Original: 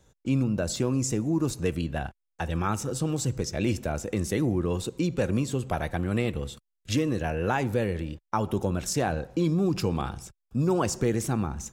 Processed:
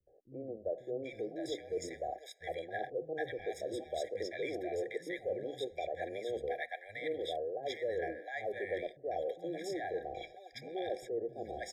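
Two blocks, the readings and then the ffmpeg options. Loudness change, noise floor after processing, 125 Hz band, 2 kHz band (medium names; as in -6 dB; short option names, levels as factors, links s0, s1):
-11.5 dB, -58 dBFS, -28.0 dB, -6.5 dB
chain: -filter_complex "[0:a]asplit=2[s0][s1];[s1]adynamicsmooth=sensitivity=4:basefreq=3800,volume=0.891[s2];[s0][s2]amix=inputs=2:normalize=0,lowshelf=f=330:t=q:w=1.5:g=-9,bandreject=f=60:t=h:w=6,bandreject=f=120:t=h:w=6,bandreject=f=180:t=h:w=6,bandreject=f=240:t=h:w=6,bandreject=f=300:t=h:w=6,areverse,acompressor=threshold=0.0282:ratio=10,areverse,acrossover=split=410 3900:gain=0.141 1 0.224[s3][s4][s5];[s3][s4][s5]amix=inputs=3:normalize=0,acrossover=split=200|760[s6][s7][s8];[s7]adelay=70[s9];[s8]adelay=780[s10];[s6][s9][s10]amix=inputs=3:normalize=0,afftfilt=real='re*eq(mod(floor(b*sr/1024/800),2),0)':imag='im*eq(mod(floor(b*sr/1024/800),2),0)':win_size=1024:overlap=0.75,volume=1.41"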